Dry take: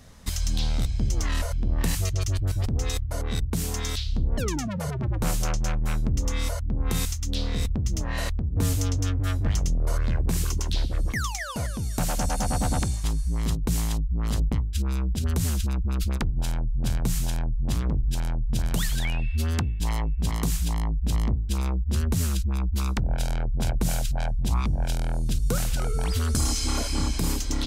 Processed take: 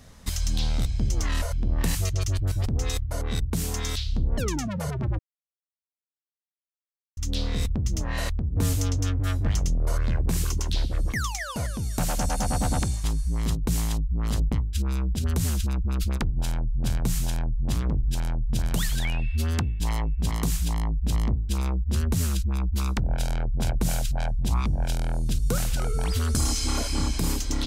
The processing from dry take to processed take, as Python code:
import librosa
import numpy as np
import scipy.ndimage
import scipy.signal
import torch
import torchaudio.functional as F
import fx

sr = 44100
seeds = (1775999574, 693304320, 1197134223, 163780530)

y = fx.edit(x, sr, fx.silence(start_s=5.19, length_s=1.98), tone=tone)